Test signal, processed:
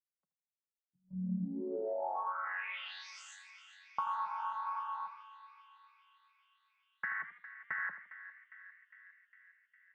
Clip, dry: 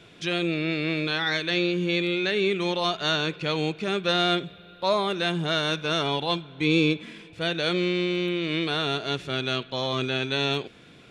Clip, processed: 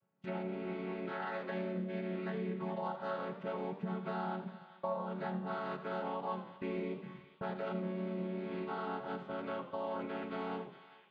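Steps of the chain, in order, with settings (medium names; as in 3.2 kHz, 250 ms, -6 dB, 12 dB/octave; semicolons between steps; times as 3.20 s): vocoder on a held chord minor triad, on F#3; gate -41 dBFS, range -21 dB; FFT filter 140 Hz 0 dB, 240 Hz -21 dB, 1 kHz -5 dB, 4.4 kHz -27 dB; compression, threshold -40 dBFS; on a send: band-passed feedback delay 406 ms, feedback 77%, band-pass 2.9 kHz, level -11.5 dB; on the sum: modulated delay 81 ms, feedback 37%, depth 111 cents, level -12 dB; trim +5 dB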